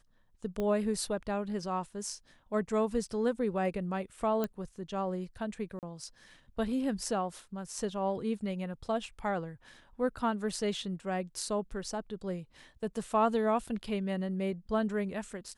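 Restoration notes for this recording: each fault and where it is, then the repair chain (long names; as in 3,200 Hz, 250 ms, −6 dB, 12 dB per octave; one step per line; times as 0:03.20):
0:00.60: click −22 dBFS
0:04.44: click −19 dBFS
0:05.79–0:05.83: drop-out 38 ms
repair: click removal
repair the gap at 0:05.79, 38 ms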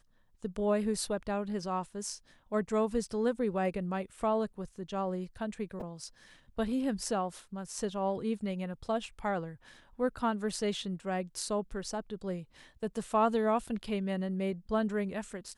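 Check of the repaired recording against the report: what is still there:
0:00.60: click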